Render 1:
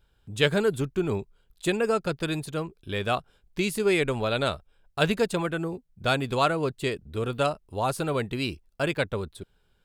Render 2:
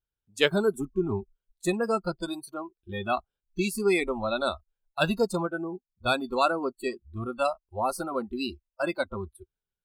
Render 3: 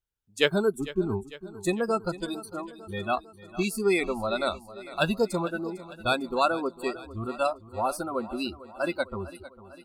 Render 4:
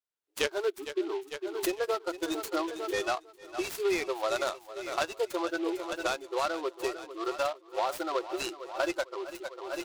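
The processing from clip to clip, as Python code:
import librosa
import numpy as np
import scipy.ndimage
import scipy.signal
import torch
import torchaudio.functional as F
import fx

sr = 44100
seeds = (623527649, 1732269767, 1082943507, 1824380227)

y1 = fx.noise_reduce_blind(x, sr, reduce_db=26)
y2 = fx.echo_feedback(y1, sr, ms=451, feedback_pct=58, wet_db=-16.5)
y3 = fx.recorder_agc(y2, sr, target_db=-12.5, rise_db_per_s=25.0, max_gain_db=30)
y3 = fx.brickwall_highpass(y3, sr, low_hz=300.0)
y3 = fx.noise_mod_delay(y3, sr, seeds[0], noise_hz=2600.0, depth_ms=0.038)
y3 = y3 * 10.0 ** (-7.5 / 20.0)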